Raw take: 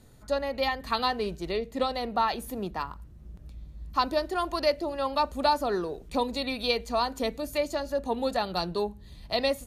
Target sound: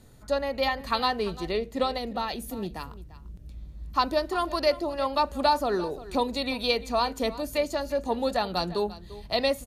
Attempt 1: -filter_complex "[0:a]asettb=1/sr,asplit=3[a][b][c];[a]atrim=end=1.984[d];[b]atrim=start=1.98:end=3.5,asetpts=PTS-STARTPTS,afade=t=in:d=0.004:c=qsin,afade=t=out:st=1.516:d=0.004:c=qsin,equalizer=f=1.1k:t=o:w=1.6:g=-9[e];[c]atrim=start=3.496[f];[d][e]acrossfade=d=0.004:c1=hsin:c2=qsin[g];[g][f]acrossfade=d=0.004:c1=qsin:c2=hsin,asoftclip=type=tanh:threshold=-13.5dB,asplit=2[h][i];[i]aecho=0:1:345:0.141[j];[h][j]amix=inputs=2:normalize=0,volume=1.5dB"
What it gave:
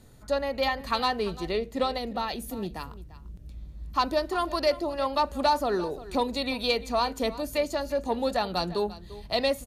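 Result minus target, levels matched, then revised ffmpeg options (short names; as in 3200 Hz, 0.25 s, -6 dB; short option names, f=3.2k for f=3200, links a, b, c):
soft clip: distortion +16 dB
-filter_complex "[0:a]asettb=1/sr,asplit=3[a][b][c];[a]atrim=end=1.984[d];[b]atrim=start=1.98:end=3.5,asetpts=PTS-STARTPTS,afade=t=in:d=0.004:c=qsin,afade=t=out:st=1.516:d=0.004:c=qsin,equalizer=f=1.1k:t=o:w=1.6:g=-9[e];[c]atrim=start=3.496[f];[d][e]acrossfade=d=0.004:c1=hsin:c2=qsin[g];[g][f]acrossfade=d=0.004:c1=qsin:c2=hsin,asoftclip=type=tanh:threshold=-4.5dB,asplit=2[h][i];[i]aecho=0:1:345:0.141[j];[h][j]amix=inputs=2:normalize=0,volume=1.5dB"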